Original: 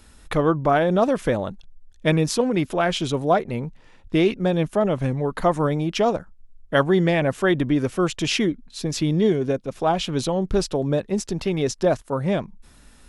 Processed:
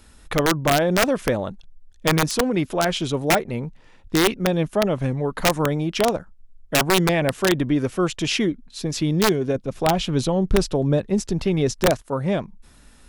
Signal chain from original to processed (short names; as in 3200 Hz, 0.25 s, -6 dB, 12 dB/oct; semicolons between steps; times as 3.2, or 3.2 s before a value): wrapped overs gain 10.5 dB; 9.55–11.91 low shelf 210 Hz +6.5 dB